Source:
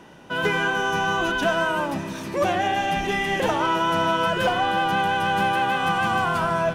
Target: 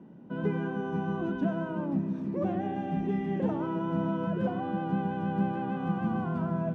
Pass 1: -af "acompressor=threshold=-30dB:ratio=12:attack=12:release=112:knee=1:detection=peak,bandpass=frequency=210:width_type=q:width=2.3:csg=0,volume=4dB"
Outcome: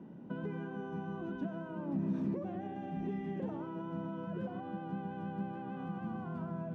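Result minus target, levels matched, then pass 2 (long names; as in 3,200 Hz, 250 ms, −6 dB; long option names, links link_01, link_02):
downward compressor: peak gain reduction +13 dB
-af "bandpass=frequency=210:width_type=q:width=2.3:csg=0,volume=4dB"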